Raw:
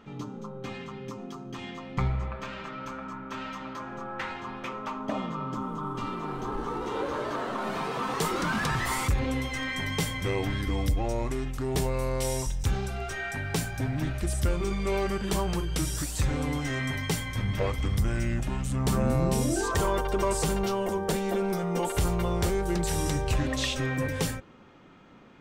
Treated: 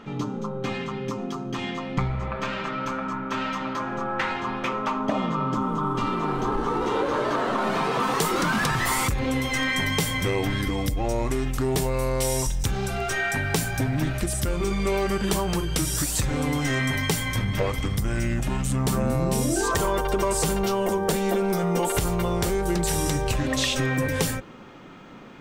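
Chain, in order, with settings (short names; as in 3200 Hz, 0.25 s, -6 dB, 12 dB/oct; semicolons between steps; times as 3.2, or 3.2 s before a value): high shelf 10000 Hz -5 dB, from 8 s +6 dB; compressor, threshold -29 dBFS, peak gain reduction 8.5 dB; bell 71 Hz -8 dB 0.61 oct; gain +9 dB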